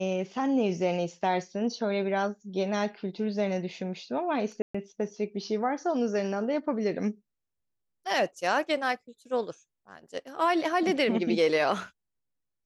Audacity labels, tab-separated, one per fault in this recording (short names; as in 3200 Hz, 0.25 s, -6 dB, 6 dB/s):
4.620000	4.750000	gap 0.125 s